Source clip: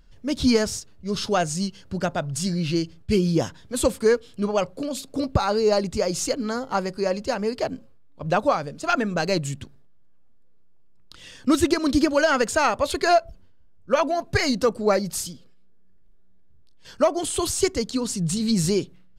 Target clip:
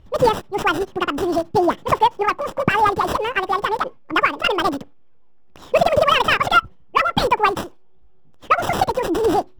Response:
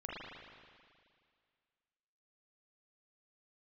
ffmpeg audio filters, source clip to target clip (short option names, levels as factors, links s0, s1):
-filter_complex "[0:a]acrossover=split=2300[s0][s1];[s1]acrusher=samples=40:mix=1:aa=0.000001[s2];[s0][s2]amix=inputs=2:normalize=0,asetrate=88200,aresample=44100,volume=1.68"